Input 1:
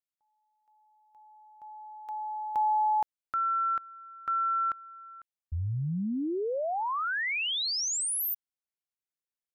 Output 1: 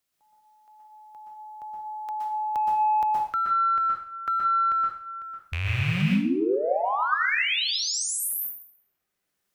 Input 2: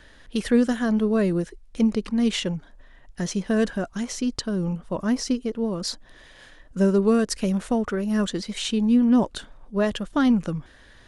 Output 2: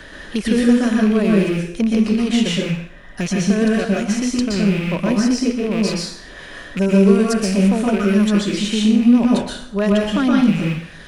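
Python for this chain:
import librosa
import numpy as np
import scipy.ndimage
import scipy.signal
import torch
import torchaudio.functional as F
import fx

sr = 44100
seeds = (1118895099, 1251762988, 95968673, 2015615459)

p1 = fx.rattle_buzz(x, sr, strikes_db=-36.0, level_db=-24.0)
p2 = fx.notch(p1, sr, hz=890.0, q=16.0)
p3 = 10.0 ** (-22.5 / 20.0) * np.tanh(p2 / 10.0 ** (-22.5 / 20.0))
p4 = p2 + (p3 * 10.0 ** (-8.0 / 20.0))
p5 = fx.rev_plate(p4, sr, seeds[0], rt60_s=0.54, hf_ratio=0.95, predelay_ms=110, drr_db=-3.0)
p6 = fx.band_squash(p5, sr, depth_pct=40)
y = p6 * 10.0 ** (-1.0 / 20.0)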